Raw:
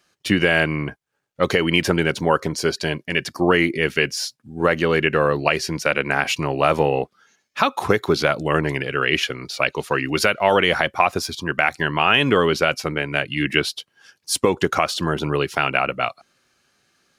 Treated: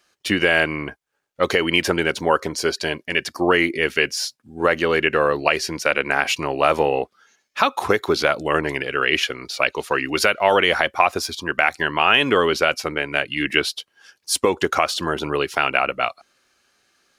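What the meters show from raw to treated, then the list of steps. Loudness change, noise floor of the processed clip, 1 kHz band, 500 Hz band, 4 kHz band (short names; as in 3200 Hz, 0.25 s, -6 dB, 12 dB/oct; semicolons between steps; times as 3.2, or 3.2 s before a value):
0.0 dB, -71 dBFS, +0.5 dB, 0.0 dB, +1.0 dB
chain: bell 140 Hz -9.5 dB 1.4 oct; gain +1 dB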